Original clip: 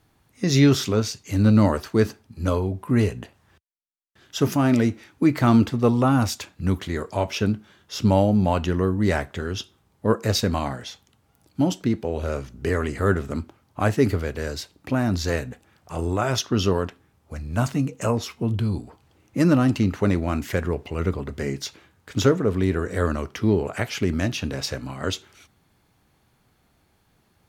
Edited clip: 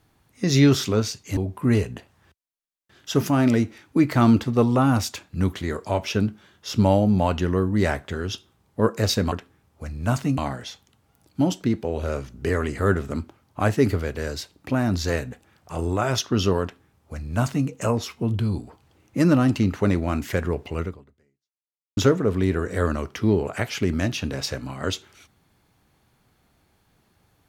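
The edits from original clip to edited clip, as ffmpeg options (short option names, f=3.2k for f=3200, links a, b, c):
-filter_complex "[0:a]asplit=5[a][b][c][d][e];[a]atrim=end=1.372[f];[b]atrim=start=2.628:end=10.582[g];[c]atrim=start=16.818:end=17.882[h];[d]atrim=start=10.578:end=22.17,asetpts=PTS-STARTPTS,afade=t=out:st=10.412:d=1.18:c=exp[i];[e]atrim=start=22.17,asetpts=PTS-STARTPTS,afade=t=in:d=0.004:c=hsin[j];[f][g]acrossfade=d=0.004:c1=hsin:c2=hsin[k];[k][h]acrossfade=d=0.004:c1=hsin:c2=hsin[l];[i][j]concat=n=2:v=0:a=1[m];[l][m]acrossfade=d=0.004:c1=hsin:c2=hsin"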